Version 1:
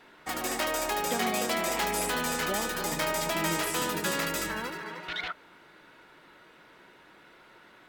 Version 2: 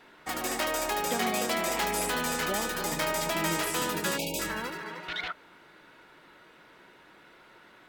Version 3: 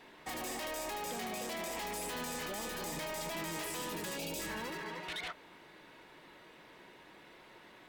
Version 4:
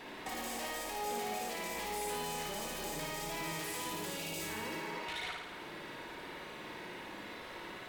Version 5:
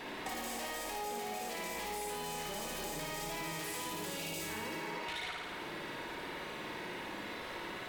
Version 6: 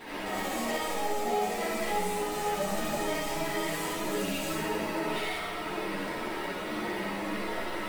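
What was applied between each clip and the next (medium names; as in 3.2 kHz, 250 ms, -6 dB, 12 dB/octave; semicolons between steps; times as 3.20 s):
spectral selection erased 4.17–4.40 s, 940–2200 Hz
peaking EQ 1.4 kHz -11 dB 0.22 oct; peak limiter -26 dBFS, peak gain reduction 9 dB; saturation -36 dBFS, distortion -11 dB
compression 5:1, threshold -50 dBFS, peak gain reduction 10.5 dB; on a send: flutter echo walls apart 9.5 m, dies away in 1.1 s; on the sum: trim +7.5 dB
compression, threshold -41 dBFS, peak gain reduction 6.5 dB; trim +4 dB
in parallel at -4 dB: sample-rate reducer 6.7 kHz; on the sum: algorithmic reverb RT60 0.54 s, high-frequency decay 0.3×, pre-delay 40 ms, DRR -7 dB; three-phase chorus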